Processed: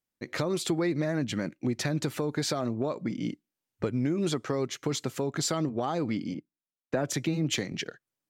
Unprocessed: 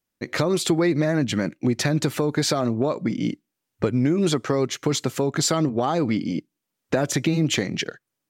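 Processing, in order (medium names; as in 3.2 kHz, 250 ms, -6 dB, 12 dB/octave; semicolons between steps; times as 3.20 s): 6.34–7.72 s: three bands expanded up and down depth 70%; trim -7.5 dB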